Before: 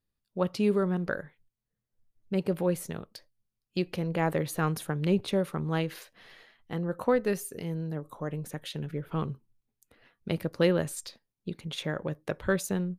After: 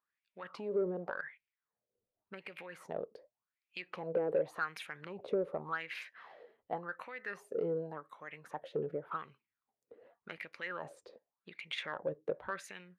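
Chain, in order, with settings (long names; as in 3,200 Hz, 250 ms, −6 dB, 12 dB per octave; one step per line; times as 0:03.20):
0:11.96–0:12.50: parametric band 610 Hz −8.5 dB 1.7 octaves
brickwall limiter −21.5 dBFS, peak gain reduction 9.5 dB
downward compressor 6 to 1, threshold −31 dBFS, peak gain reduction 6 dB
LFO wah 0.88 Hz 440–2,400 Hz, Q 5.7
harmonic generator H 5 −27 dB, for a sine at −32.5 dBFS
level +11.5 dB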